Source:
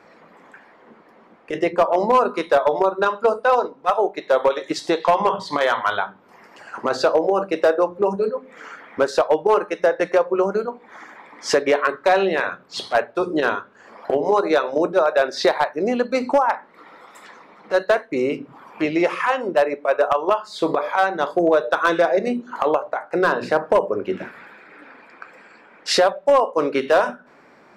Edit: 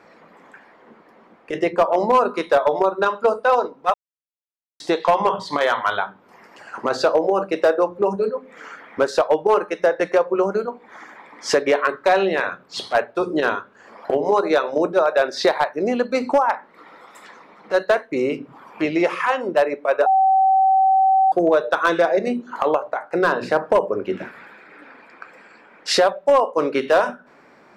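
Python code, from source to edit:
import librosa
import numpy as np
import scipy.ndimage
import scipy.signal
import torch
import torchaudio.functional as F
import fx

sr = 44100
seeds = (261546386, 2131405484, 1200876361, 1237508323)

y = fx.edit(x, sr, fx.silence(start_s=3.94, length_s=0.86),
    fx.bleep(start_s=20.06, length_s=1.26, hz=767.0, db=-12.0), tone=tone)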